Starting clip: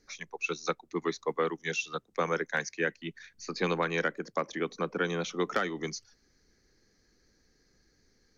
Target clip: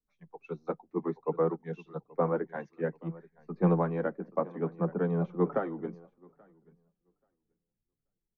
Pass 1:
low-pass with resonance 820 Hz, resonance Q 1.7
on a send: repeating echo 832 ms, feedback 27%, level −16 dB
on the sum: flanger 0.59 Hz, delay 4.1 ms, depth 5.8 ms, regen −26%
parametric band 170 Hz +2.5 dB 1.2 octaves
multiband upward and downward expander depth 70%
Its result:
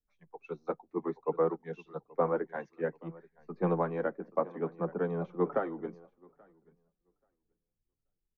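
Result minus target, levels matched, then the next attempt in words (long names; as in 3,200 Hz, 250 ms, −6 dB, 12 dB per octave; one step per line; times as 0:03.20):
125 Hz band −5.0 dB
low-pass with resonance 820 Hz, resonance Q 1.7
on a send: repeating echo 832 ms, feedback 27%, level −16 dB
on the sum: flanger 0.59 Hz, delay 4.1 ms, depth 5.8 ms, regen −26%
parametric band 170 Hz +9 dB 1.2 octaves
multiband upward and downward expander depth 70%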